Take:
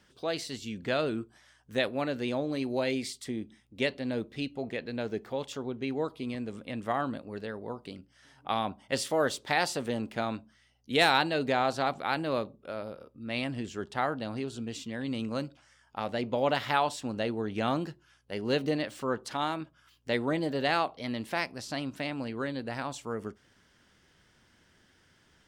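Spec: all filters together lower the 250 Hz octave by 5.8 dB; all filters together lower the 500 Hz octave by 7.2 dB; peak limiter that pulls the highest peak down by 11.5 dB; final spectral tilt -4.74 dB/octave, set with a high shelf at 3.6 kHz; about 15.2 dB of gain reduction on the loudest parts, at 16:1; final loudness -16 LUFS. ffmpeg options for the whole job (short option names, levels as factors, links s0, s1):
-af "equalizer=f=250:t=o:g=-4.5,equalizer=f=500:t=o:g=-8,highshelf=f=3600:g=-4,acompressor=threshold=0.0158:ratio=16,volume=26.6,alimiter=limit=0.596:level=0:latency=1"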